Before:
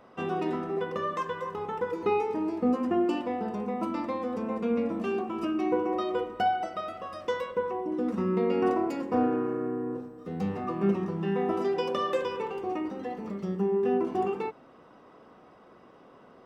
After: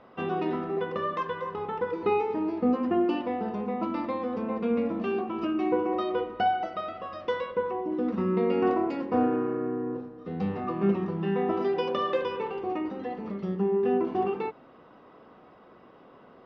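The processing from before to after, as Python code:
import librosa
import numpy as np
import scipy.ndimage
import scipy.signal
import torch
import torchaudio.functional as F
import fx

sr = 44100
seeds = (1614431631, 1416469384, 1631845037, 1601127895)

y = scipy.signal.sosfilt(scipy.signal.cheby2(4, 60, 12000.0, 'lowpass', fs=sr, output='sos'), x)
y = y * 10.0 ** (1.0 / 20.0)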